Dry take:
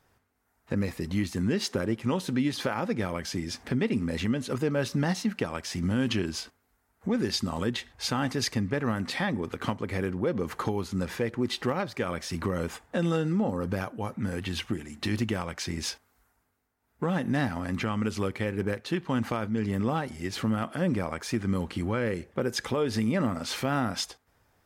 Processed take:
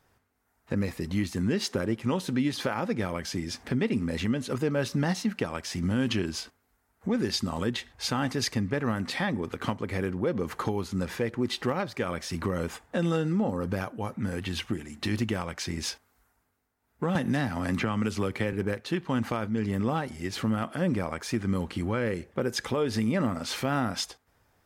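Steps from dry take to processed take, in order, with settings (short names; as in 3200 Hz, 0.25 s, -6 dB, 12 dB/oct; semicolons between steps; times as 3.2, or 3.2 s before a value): 17.15–18.53 three-band squash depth 100%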